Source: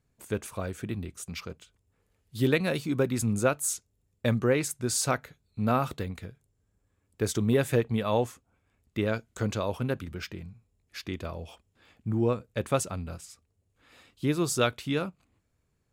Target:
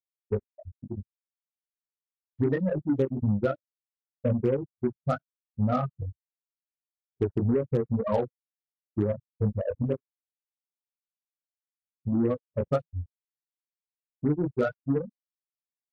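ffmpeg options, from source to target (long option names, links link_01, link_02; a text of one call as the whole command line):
ffmpeg -i in.wav -af "lowpass=frequency=2100:width=0.5412,lowpass=frequency=2100:width=1.3066,afftfilt=real='re*gte(hypot(re,im),0.2)':imag='im*gte(hypot(re,im),0.2)':win_size=1024:overlap=0.75,flanger=delay=19.5:depth=3:speed=2.1,acompressor=threshold=-30dB:ratio=16,aeval=exprs='0.0596*(cos(1*acos(clip(val(0)/0.0596,-1,1)))-cos(1*PI/2))+0.00188*(cos(2*acos(clip(val(0)/0.0596,-1,1)))-cos(2*PI/2))+0.000841*(cos(4*acos(clip(val(0)/0.0596,-1,1)))-cos(4*PI/2))+0.00266*(cos(7*acos(clip(val(0)/0.0596,-1,1)))-cos(7*PI/2))':channel_layout=same,acontrast=68,volume=2.5dB" -ar 24000 -c:a aac -b:a 96k out.aac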